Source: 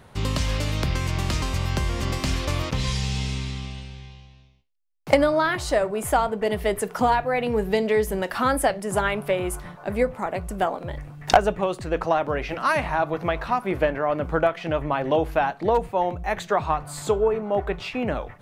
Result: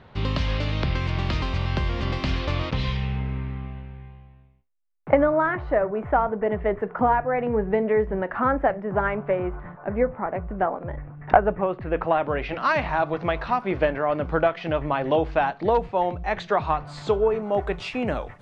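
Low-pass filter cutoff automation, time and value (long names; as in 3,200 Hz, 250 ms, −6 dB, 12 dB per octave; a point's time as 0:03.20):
low-pass filter 24 dB per octave
0:02.80 4,200 Hz
0:03.23 1,900 Hz
0:11.54 1,900 Hz
0:12.70 5,000 Hz
0:17.07 5,000 Hz
0:17.56 9,600 Hz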